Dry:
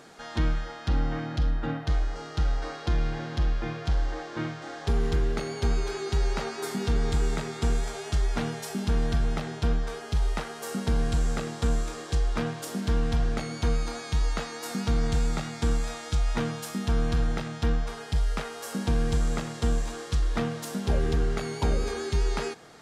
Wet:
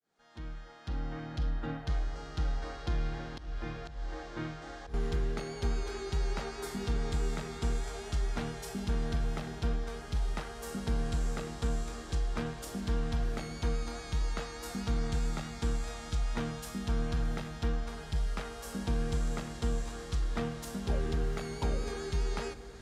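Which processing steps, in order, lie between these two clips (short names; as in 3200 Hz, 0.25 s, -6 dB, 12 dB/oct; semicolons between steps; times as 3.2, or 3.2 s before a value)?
opening faded in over 1.54 s; 2.98–4.94 auto swell 0.273 s; diffused feedback echo 0.732 s, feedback 48%, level -14 dB; gain -6.5 dB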